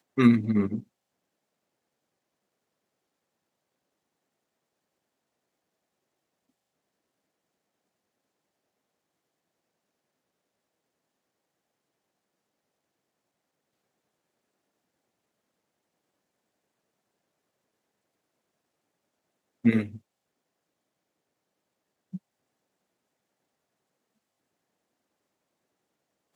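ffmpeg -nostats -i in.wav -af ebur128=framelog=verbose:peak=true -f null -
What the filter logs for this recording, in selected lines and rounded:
Integrated loudness:
  I:         -24.5 LUFS
  Threshold: -36.7 LUFS
Loudness range:
  LRA:        19.7 LU
  Threshold: -55.8 LUFS
  LRA low:   -52.8 LUFS
  LRA high:  -33.1 LUFS
True peak:
  Peak:       -6.6 dBFS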